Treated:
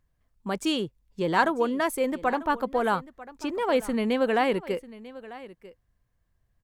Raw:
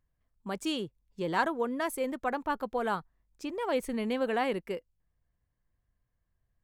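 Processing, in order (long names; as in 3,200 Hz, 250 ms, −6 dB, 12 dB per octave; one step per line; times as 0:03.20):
high-shelf EQ 9,200 Hz −3 dB
on a send: single-tap delay 944 ms −18 dB
on the sum: level +6 dB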